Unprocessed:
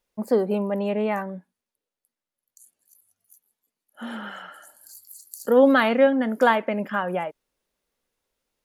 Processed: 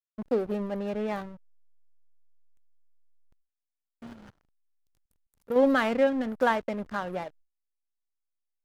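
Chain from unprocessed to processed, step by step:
slack as between gear wheels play −26.5 dBFS
noise gate with hold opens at −50 dBFS
0:04.13–0:05.56: output level in coarse steps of 22 dB
level −5.5 dB

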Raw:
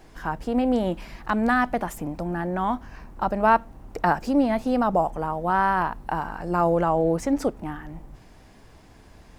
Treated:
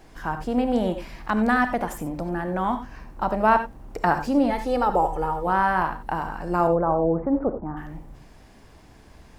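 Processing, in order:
0:04.50–0:05.47: comb filter 2.3 ms, depth 66%
0:06.67–0:07.77: low-pass filter 1,300 Hz 24 dB per octave
reverb whose tail is shaped and stops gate 110 ms rising, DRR 8.5 dB

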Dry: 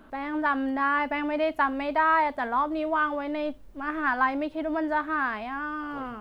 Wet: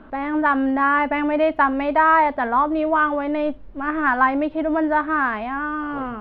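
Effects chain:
high-frequency loss of the air 320 metres
level +8.5 dB

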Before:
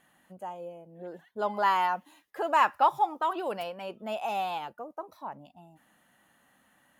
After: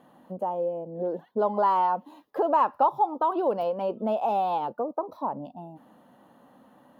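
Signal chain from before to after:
octave-band graphic EQ 125/250/500/1,000/2,000/4,000/8,000 Hz +7/+12/+12/+10/−8/+4/−10 dB
downward compressor 2 to 1, threshold −27 dBFS, peak gain reduction 11.5 dB

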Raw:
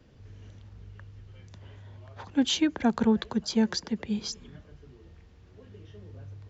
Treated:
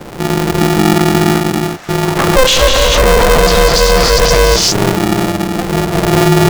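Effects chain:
adaptive Wiener filter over 15 samples
0:01.36–0:01.89: high-pass filter 810 Hz
leveller curve on the samples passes 1
reverb whose tail is shaped and stops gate 420 ms rising, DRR −2 dB
boost into a limiter +31 dB
ring modulator with a square carrier 260 Hz
level −1 dB

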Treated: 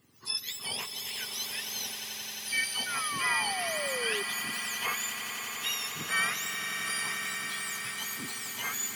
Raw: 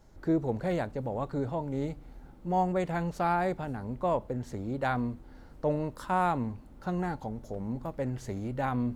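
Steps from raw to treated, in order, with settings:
frequency axis turned over on the octave scale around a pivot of 1,300 Hz
echo that builds up and dies away 88 ms, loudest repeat 8, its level −11.5 dB
sound drawn into the spectrogram fall, 0:02.86–0:04.23, 390–1,500 Hz −37 dBFS

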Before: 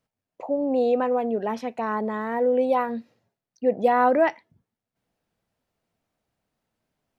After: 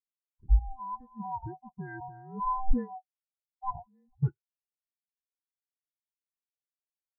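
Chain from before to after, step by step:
neighbouring bands swapped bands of 500 Hz
low-shelf EQ 200 Hz +8.5 dB
0:00.59–0:01.20: downward expander −14 dBFS
soft clipping −17 dBFS, distortion −10 dB
0:02.03–0:02.47: high-shelf EQ 2,300 Hz −11 dB
0:03.74–0:04.23: compressor whose output falls as the input rises −35 dBFS, ratio −1
every bin expanded away from the loudest bin 2.5 to 1

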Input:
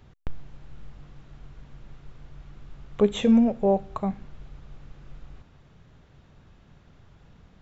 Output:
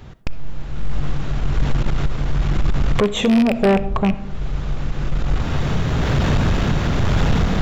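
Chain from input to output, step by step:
loose part that buzzes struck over −30 dBFS, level −17 dBFS
camcorder AGC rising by 15 dB per second
0:03.65–0:04.15: spectral tilt −2 dB per octave
in parallel at +0.5 dB: downward compressor, threshold −26 dBFS, peak gain reduction 12 dB
on the sum: amplitude tremolo 1.1 Hz, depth 31%
soft clipping −18 dBFS, distortion −12 dB
convolution reverb RT60 0.75 s, pre-delay 20 ms, DRR 15 dB
level +7 dB

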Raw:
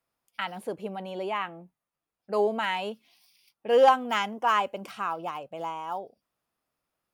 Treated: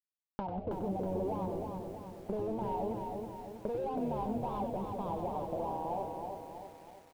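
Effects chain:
adaptive Wiener filter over 25 samples
fuzz pedal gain 39 dB, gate −45 dBFS
drawn EQ curve 930 Hz 0 dB, 1,300 Hz −20 dB, 3,700 Hz −12 dB
downward compressor 6 to 1, threshold −34 dBFS, peak gain reduction 18.5 dB
high-frequency loss of the air 410 metres
notch filter 1,900 Hz, Q 7.5
tuned comb filter 62 Hz, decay 0.35 s, harmonics all, mix 30%
echo with shifted repeats 94 ms, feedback 57%, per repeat −98 Hz, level −7.5 dB
feedback echo at a low word length 322 ms, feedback 55%, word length 10 bits, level −4.5 dB

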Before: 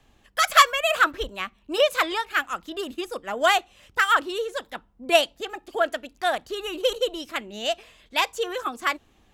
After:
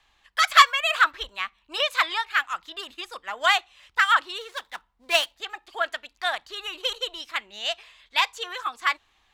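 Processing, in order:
0:04.41–0:05.35: gap after every zero crossing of 0.077 ms
octave-band graphic EQ 125/250/500/1,000/2,000/4,000/8,000 Hz −7/−8/−4/+9/+8/+10/+3 dB
level −9 dB

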